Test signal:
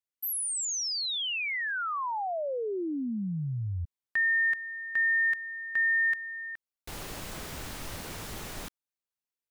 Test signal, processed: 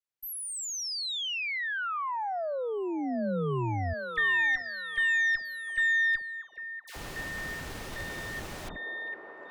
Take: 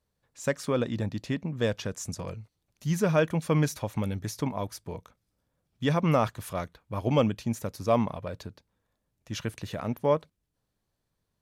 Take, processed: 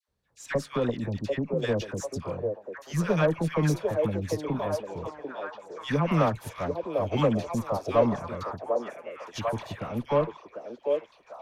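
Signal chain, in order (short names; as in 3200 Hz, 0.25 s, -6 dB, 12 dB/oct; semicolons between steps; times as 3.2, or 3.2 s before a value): dispersion lows, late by 84 ms, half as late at 1100 Hz; added harmonics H 6 -24 dB, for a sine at -11 dBFS; high shelf 7000 Hz -7.5 dB; on a send: delay with a stepping band-pass 0.746 s, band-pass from 480 Hz, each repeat 0.7 oct, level -1 dB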